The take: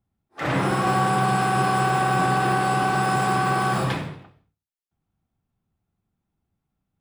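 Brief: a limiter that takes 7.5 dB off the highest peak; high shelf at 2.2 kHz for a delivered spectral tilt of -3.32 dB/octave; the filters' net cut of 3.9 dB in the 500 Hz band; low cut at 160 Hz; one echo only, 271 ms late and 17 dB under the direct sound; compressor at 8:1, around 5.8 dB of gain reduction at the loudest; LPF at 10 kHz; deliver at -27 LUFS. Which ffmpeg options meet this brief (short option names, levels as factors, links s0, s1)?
-af "highpass=160,lowpass=10000,equalizer=f=500:t=o:g=-6,highshelf=f=2200:g=8,acompressor=threshold=0.0631:ratio=8,alimiter=limit=0.075:level=0:latency=1,aecho=1:1:271:0.141,volume=1.58"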